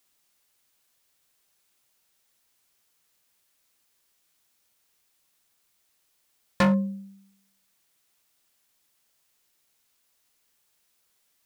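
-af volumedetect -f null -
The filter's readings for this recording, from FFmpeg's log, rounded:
mean_volume: -37.3 dB
max_volume: -17.4 dB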